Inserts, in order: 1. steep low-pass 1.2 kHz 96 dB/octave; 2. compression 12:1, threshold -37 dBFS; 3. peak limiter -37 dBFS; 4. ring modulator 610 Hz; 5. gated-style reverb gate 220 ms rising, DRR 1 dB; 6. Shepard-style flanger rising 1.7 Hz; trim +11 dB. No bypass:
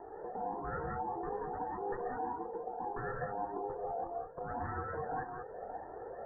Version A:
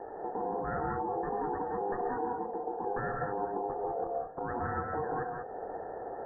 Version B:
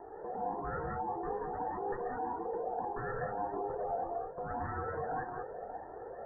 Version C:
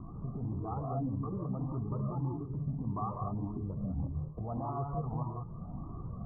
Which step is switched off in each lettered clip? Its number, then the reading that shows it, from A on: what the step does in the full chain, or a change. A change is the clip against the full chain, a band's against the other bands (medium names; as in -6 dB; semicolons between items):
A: 6, loudness change +4.5 LU; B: 2, loudness change +1.5 LU; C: 4, crest factor change -1.5 dB